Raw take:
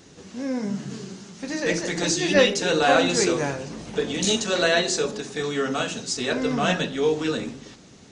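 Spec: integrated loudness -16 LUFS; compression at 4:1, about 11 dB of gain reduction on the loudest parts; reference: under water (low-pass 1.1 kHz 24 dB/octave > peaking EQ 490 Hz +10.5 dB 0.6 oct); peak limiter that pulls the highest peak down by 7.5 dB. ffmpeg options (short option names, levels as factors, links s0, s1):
-af "acompressor=threshold=0.0501:ratio=4,alimiter=limit=0.075:level=0:latency=1,lowpass=f=1100:w=0.5412,lowpass=f=1100:w=1.3066,equalizer=f=490:t=o:w=0.6:g=10.5,volume=4.22"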